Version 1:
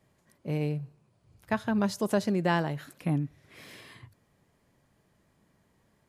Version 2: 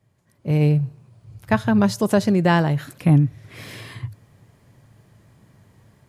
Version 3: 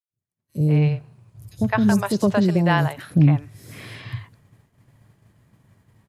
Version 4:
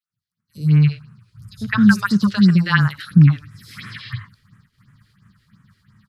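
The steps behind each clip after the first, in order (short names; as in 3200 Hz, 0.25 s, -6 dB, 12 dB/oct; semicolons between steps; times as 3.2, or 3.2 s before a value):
bell 110 Hz +13 dB 0.69 oct; AGC gain up to 13 dB; gain -2.5 dB
three bands offset in time highs, lows, mids 0.1/0.21 s, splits 510/5300 Hz; expander -48 dBFS
phaser stages 4, 2.9 Hz, lowest notch 160–4400 Hz; EQ curve 110 Hz 0 dB, 200 Hz +8 dB, 310 Hz -8 dB, 700 Hz -18 dB, 1300 Hz +15 dB, 2400 Hz +6 dB, 4600 Hz +13 dB, 6600 Hz -1 dB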